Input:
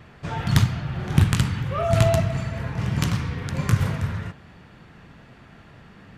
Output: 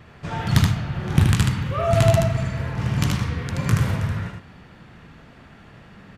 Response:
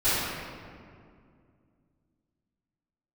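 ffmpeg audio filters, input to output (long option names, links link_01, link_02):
-af "aecho=1:1:77:0.708"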